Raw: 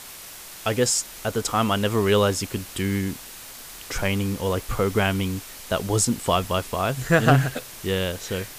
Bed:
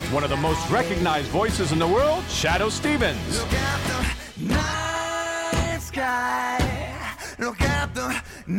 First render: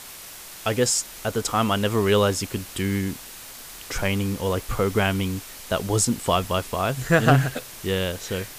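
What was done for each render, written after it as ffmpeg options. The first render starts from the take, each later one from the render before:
-af anull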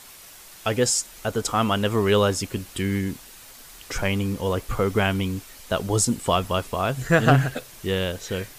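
-af "afftdn=nr=6:nf=-41"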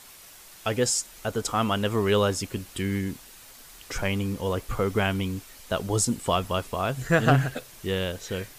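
-af "volume=-3dB"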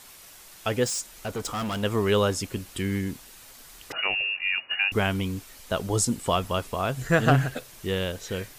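-filter_complex "[0:a]asettb=1/sr,asplit=3[a][b][c];[a]atrim=end=0.854[d];[b]atrim=start=0.85:end=1.83,asetpts=PTS-STARTPTS,afade=t=in:d=0.004:c=qsin,afade=t=out:st=0.976:d=0.004:c=qsin,volume=27dB,asoftclip=hard,volume=-27dB[e];[c]atrim=start=1.826[f];[d][e]acrossfade=d=0.004:c1=hsin:c2=qsin[g];[g][f]acrossfade=d=0.004:c1=qsin:c2=hsin,asettb=1/sr,asplit=3[h][i][j];[h]atrim=end=3.924[k];[i]atrim=start=3.92:end=4.92,asetpts=PTS-STARTPTS,afade=t=in:d=0.004:c=qsin,afade=t=out:st=0.996:d=0.004:c=qsin,lowpass=f=2.5k:t=q:w=0.5098,lowpass=f=2.5k:t=q:w=0.6013,lowpass=f=2.5k:t=q:w=0.9,lowpass=f=2.5k:t=q:w=2.563,afreqshift=-2900[l];[j]atrim=start=4.916[m];[k][l]acrossfade=d=0.004:c1=hsin:c2=qsin[n];[n][m]acrossfade=d=0.004:c1=qsin:c2=hsin"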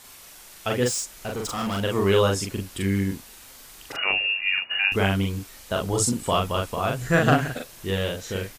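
-filter_complex "[0:a]asplit=2[a][b];[b]adelay=41,volume=-2dB[c];[a][c]amix=inputs=2:normalize=0"

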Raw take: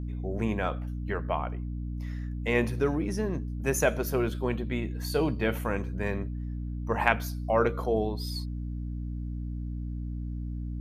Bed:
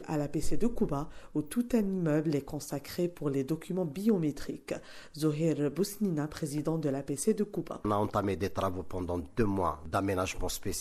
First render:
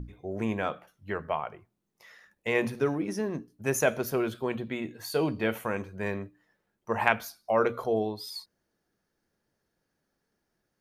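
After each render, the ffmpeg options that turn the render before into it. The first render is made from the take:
-af "bandreject=f=60:t=h:w=6,bandreject=f=120:t=h:w=6,bandreject=f=180:t=h:w=6,bandreject=f=240:t=h:w=6,bandreject=f=300:t=h:w=6"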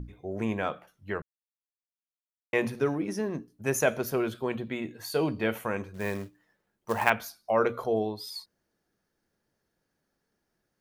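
-filter_complex "[0:a]asettb=1/sr,asplit=3[a][b][c];[a]atrim=end=5.944[d];[b]atrim=start=5.94:end=7.1,asetpts=PTS-STARTPTS,afade=t=in:d=0.004:c=qsin,afade=t=out:st=1.156:d=0.004:c=qsin,acrusher=bits=4:mode=log:mix=0:aa=0.000001[e];[c]atrim=start=7.096[f];[d][e]acrossfade=d=0.004:c1=hsin:c2=qsin[g];[g][f]acrossfade=d=0.004:c1=qsin:c2=hsin,asplit=3[h][i][j];[h]atrim=end=1.22,asetpts=PTS-STARTPTS,afade=t=out:st=1.216:d=0.004:c=hsin[k];[i]atrim=start=1.22:end=2.53,asetpts=PTS-STARTPTS,volume=0[l];[j]atrim=start=2.53,asetpts=PTS-STARTPTS,afade=t=in:d=0.004:c=hsin[m];[k][l][m]concat=n=3:v=0:a=1"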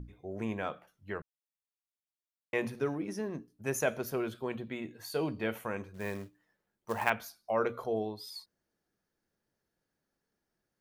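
-af "volume=-5.5dB"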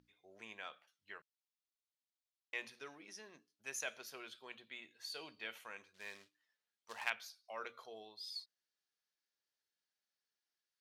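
-af "bandpass=f=4k:t=q:w=1.2:csg=0"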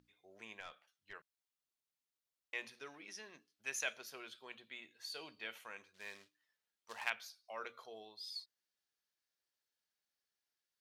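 -filter_complex "[0:a]asettb=1/sr,asplit=3[a][b][c];[a]atrim=end=0.604[d];[b]atrim=start=0.6:end=1.13,asetpts=PTS-STARTPTS,afade=t=in:d=0.004:c=qsin,afade=t=out:st=0.526:d=0.004:c=qsin,aeval=exprs='(tanh(112*val(0)+0.45)-tanh(0.45))/112':c=same[e];[c]atrim=start=1.126[f];[d][e]acrossfade=d=0.004:c1=hsin:c2=qsin[g];[g][f]acrossfade=d=0.004:c1=qsin:c2=hsin,asettb=1/sr,asplit=3[h][i][j];[h]atrim=end=2.944[k];[i]atrim=start=2.94:end=3.93,asetpts=PTS-STARTPTS,afade=t=in:d=0.004:c=qsin,afade=t=out:st=0.986:d=0.004:c=qsin,equalizer=f=2.6k:w=0.64:g=5[l];[j]atrim=start=3.926[m];[k][l]acrossfade=d=0.004:c1=hsin:c2=qsin[n];[n][m]acrossfade=d=0.004:c1=qsin:c2=hsin"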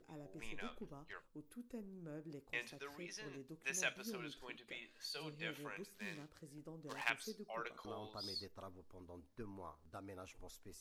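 -filter_complex "[1:a]volume=-22dB[a];[0:a][a]amix=inputs=2:normalize=0"

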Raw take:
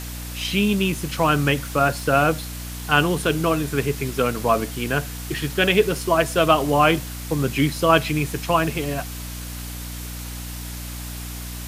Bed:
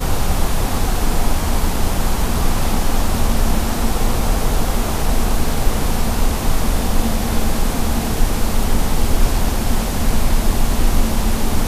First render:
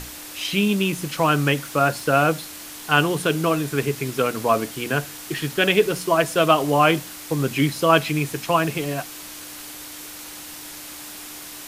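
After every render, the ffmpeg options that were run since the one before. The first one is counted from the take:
-af "bandreject=f=60:t=h:w=6,bandreject=f=120:t=h:w=6,bandreject=f=180:t=h:w=6,bandreject=f=240:t=h:w=6"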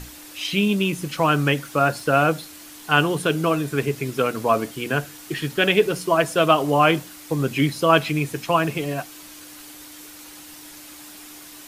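-af "afftdn=nr=6:nf=-38"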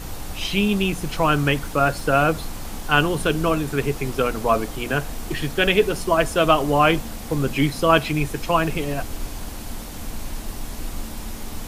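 -filter_complex "[1:a]volume=-15.5dB[a];[0:a][a]amix=inputs=2:normalize=0"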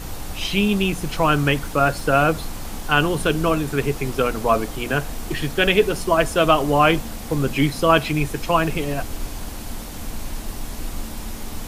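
-af "volume=1dB,alimiter=limit=-2dB:level=0:latency=1"

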